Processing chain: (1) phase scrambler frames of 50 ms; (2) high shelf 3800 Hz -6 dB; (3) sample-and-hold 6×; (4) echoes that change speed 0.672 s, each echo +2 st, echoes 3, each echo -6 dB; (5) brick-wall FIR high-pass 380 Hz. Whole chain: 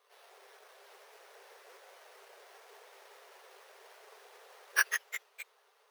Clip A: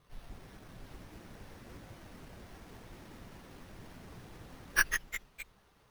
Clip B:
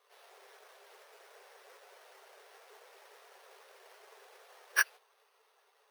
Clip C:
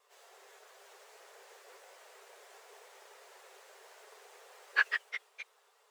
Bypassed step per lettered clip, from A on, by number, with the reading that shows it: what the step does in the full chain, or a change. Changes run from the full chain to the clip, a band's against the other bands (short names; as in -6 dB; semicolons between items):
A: 5, momentary loudness spread change +2 LU; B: 4, momentary loudness spread change -17 LU; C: 3, distortion -2 dB